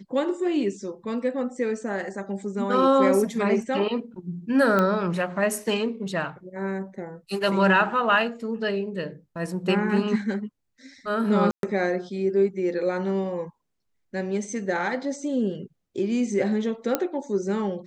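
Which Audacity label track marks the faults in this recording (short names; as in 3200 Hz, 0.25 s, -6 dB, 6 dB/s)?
4.790000	4.790000	pop -11 dBFS
11.510000	11.630000	gap 0.122 s
16.950000	16.950000	pop -8 dBFS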